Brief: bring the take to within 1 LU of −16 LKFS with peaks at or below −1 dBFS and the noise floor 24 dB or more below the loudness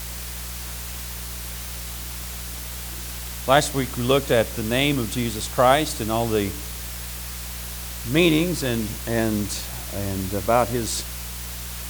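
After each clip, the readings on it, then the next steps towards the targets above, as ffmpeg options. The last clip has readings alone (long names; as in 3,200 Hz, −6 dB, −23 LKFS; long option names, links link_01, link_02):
mains hum 60 Hz; hum harmonics up to 180 Hz; level of the hum −34 dBFS; background noise floor −33 dBFS; target noise floor −48 dBFS; integrated loudness −24.0 LKFS; sample peak −3.5 dBFS; target loudness −16.0 LKFS
→ -af "bandreject=frequency=60:width_type=h:width=4,bandreject=frequency=120:width_type=h:width=4,bandreject=frequency=180:width_type=h:width=4"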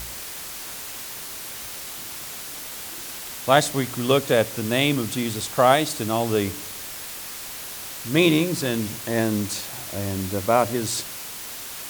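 mains hum none found; background noise floor −36 dBFS; target noise floor −49 dBFS
→ -af "afftdn=noise_reduction=13:noise_floor=-36"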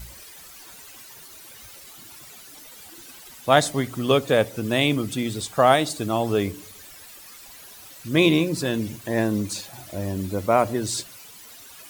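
background noise floor −45 dBFS; target noise floor −47 dBFS
→ -af "afftdn=noise_reduction=6:noise_floor=-45"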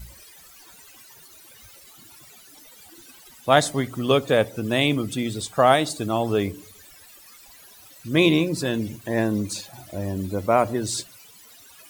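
background noise floor −49 dBFS; integrated loudness −23.0 LKFS; sample peak −3.5 dBFS; target loudness −16.0 LKFS
→ -af "volume=7dB,alimiter=limit=-1dB:level=0:latency=1"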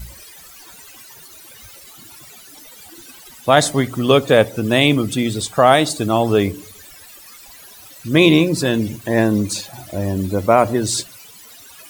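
integrated loudness −16.5 LKFS; sample peak −1.0 dBFS; background noise floor −42 dBFS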